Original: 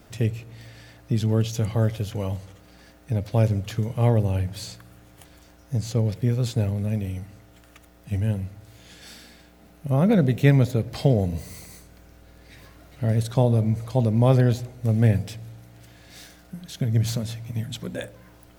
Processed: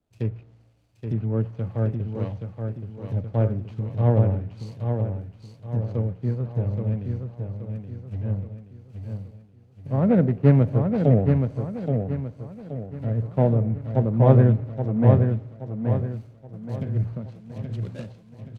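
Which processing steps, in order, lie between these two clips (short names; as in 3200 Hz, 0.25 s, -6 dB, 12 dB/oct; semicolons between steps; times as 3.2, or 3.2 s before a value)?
median filter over 25 samples; treble ducked by the level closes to 1700 Hz, closed at -19.5 dBFS; on a send: feedback echo 0.825 s, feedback 56%, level -3.5 dB; on the sum: three-band expander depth 70%; gain -3 dB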